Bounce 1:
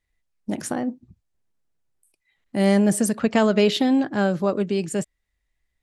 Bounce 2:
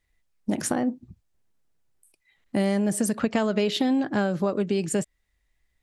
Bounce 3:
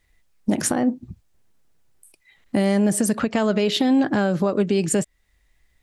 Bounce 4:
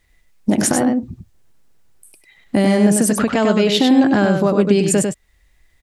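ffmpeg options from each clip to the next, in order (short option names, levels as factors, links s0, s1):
-af "acompressor=threshold=0.0631:ratio=6,volume=1.5"
-af "alimiter=limit=0.112:level=0:latency=1:release=378,volume=2.82"
-af "aecho=1:1:98:0.562,volume=1.68"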